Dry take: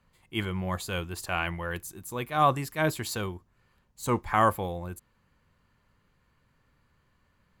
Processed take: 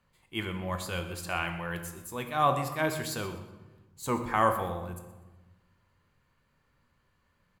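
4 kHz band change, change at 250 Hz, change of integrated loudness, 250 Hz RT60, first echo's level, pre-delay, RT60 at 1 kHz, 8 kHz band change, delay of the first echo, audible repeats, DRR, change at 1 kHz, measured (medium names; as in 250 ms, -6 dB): -1.5 dB, -2.5 dB, -2.0 dB, 1.6 s, -15.5 dB, 13 ms, 1.1 s, -2.0 dB, 123 ms, 1, 6.0 dB, -2.0 dB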